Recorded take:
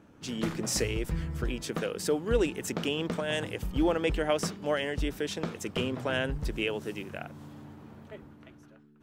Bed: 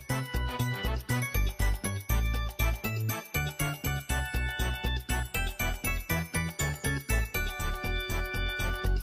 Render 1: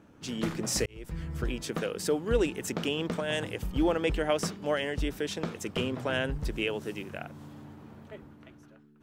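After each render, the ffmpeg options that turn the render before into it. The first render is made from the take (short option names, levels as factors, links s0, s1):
-filter_complex "[0:a]asplit=2[s0][s1];[s0]atrim=end=0.86,asetpts=PTS-STARTPTS,afade=t=out:st=0.856:d=0.004:c=hsin[s2];[s1]atrim=start=0.86,asetpts=PTS-STARTPTS,afade=t=in:d=0.53[s3];[s2][s3]concat=n=2:v=0:a=1"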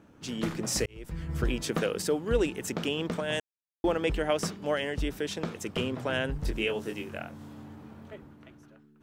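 -filter_complex "[0:a]asettb=1/sr,asplit=3[s0][s1][s2];[s0]atrim=end=6.394[s3];[s1]atrim=start=6.39:end=8.14,asetpts=PTS-STARTPTS,afade=t=in:d=0.004:c=qsin,afade=t=out:st=1.746:d=0.004:c=qsin,asplit=2[s4][s5];[s5]adelay=23,volume=0.531[s6];[s4][s6]amix=inputs=2:normalize=0,atrim=end_sample=77175[s7];[s2]atrim=start=8.136[s8];[s3][s7]acrossfade=d=0.004:c1=hsin:c2=qsin[s9];[s9][s8]acrossfade=d=0.004:c1=qsin:c2=hsin,asplit=5[s10][s11][s12][s13][s14];[s10]atrim=end=1.292[s15];[s11]atrim=start=1.288:end=2.022,asetpts=PTS-STARTPTS,volume=1.5[s16];[s12]atrim=start=2.018:end=3.4,asetpts=PTS-STARTPTS,afade=t=out:st=1.378:d=0.004:c=hsin[s17];[s13]atrim=start=3.4:end=3.84,asetpts=PTS-STARTPTS,volume=0[s18];[s14]atrim=start=3.84,asetpts=PTS-STARTPTS,afade=t=in:d=0.004:c=hsin[s19];[s15][s16]acrossfade=d=0.004:c1=hsin:c2=hsin[s20];[s17][s18][s19]concat=n=3:v=0:a=1[s21];[s20][s21]acrossfade=d=0.004:c1=hsin:c2=hsin"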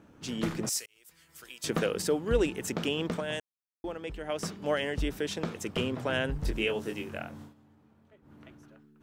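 -filter_complex "[0:a]asettb=1/sr,asplit=3[s0][s1][s2];[s0]atrim=end=0.694[s3];[s1]atrim=start=0.69:end=1.64,asetpts=PTS-STARTPTS,afade=t=in:d=0.004:c=qsin,afade=t=out:st=0.946:d=0.004:c=qsin,aderivative[s4];[s2]atrim=start=1.636[s5];[s3][s4]acrossfade=d=0.004:c1=hsin:c2=qsin[s6];[s6][s5]acrossfade=d=0.004:c1=qsin:c2=hsin,asplit=5[s7][s8][s9][s10][s11];[s7]atrim=end=3.57,asetpts=PTS-STARTPTS,afade=t=out:st=3.1:d=0.47:silence=0.298538[s12];[s8]atrim=start=3.57:end=4.2,asetpts=PTS-STARTPTS,volume=0.299[s13];[s9]atrim=start=4.2:end=7.54,asetpts=PTS-STARTPTS,afade=t=in:d=0.47:silence=0.298538,afade=t=out:st=3.2:d=0.14:silence=0.16788[s14];[s10]atrim=start=7.54:end=8.22,asetpts=PTS-STARTPTS,volume=0.168[s15];[s11]atrim=start=8.22,asetpts=PTS-STARTPTS,afade=t=in:d=0.14:silence=0.16788[s16];[s12][s13][s14][s15][s16]concat=n=5:v=0:a=1"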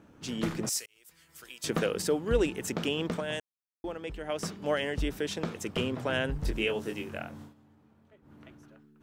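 -af anull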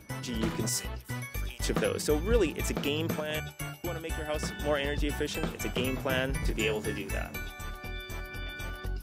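-filter_complex "[1:a]volume=0.447[s0];[0:a][s0]amix=inputs=2:normalize=0"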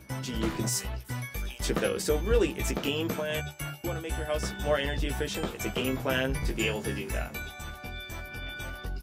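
-filter_complex "[0:a]asplit=2[s0][s1];[s1]adelay=15,volume=0.562[s2];[s0][s2]amix=inputs=2:normalize=0"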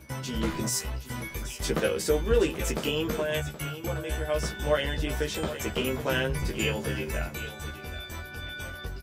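-filter_complex "[0:a]asplit=2[s0][s1];[s1]adelay=13,volume=0.531[s2];[s0][s2]amix=inputs=2:normalize=0,aecho=1:1:775:0.224"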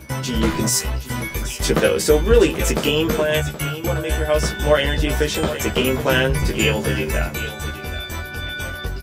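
-af "volume=3.16,alimiter=limit=0.708:level=0:latency=1"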